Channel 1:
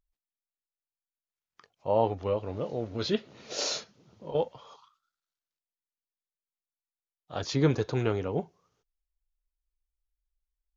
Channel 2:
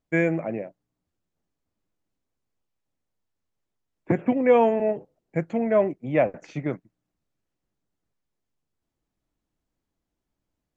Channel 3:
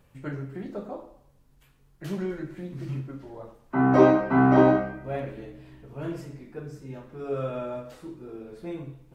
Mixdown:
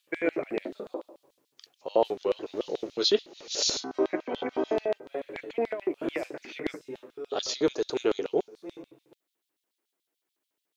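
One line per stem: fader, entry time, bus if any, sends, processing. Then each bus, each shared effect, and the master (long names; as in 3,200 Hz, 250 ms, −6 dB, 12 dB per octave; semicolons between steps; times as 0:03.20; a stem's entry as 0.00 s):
−1.5 dB, 0.00 s, no send, high-shelf EQ 4,500 Hz +11.5 dB
−3.5 dB, 0.00 s, no send, low-pass filter 2,600 Hz 12 dB per octave; tilt shelving filter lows −8 dB, about 1,100 Hz; compressor whose output falls as the input rises −27 dBFS, ratio −0.5
−4.5 dB, 0.00 s, no send, automatic ducking −8 dB, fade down 0.25 s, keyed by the first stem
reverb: not used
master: speech leveller within 4 dB 0.5 s; auto-filter high-pass square 6.9 Hz 370–3,600 Hz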